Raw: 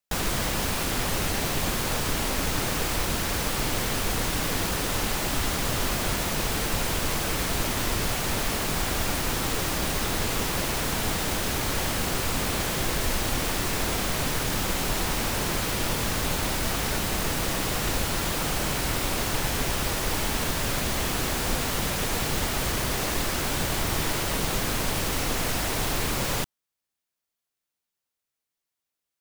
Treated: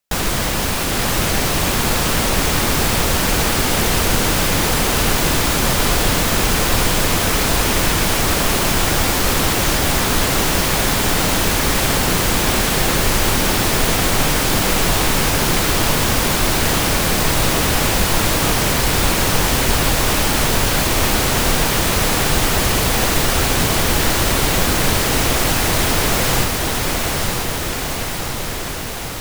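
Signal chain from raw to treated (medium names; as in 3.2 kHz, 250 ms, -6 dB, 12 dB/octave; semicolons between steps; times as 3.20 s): echo that smears into a reverb 915 ms, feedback 71%, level -3 dB; trim +7.5 dB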